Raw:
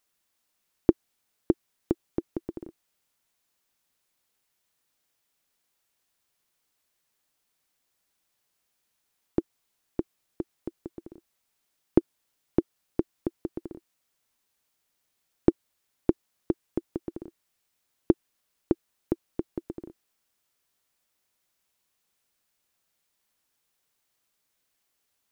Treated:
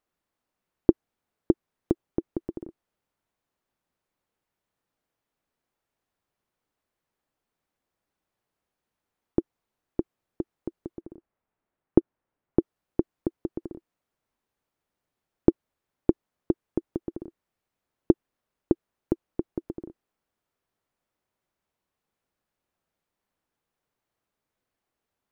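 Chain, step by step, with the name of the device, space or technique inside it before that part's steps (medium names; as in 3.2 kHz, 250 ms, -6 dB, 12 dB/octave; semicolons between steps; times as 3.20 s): through cloth (treble shelf 2.2 kHz -17.5 dB); 11.01–12.59 s: low-pass 2.2 kHz; trim +2.5 dB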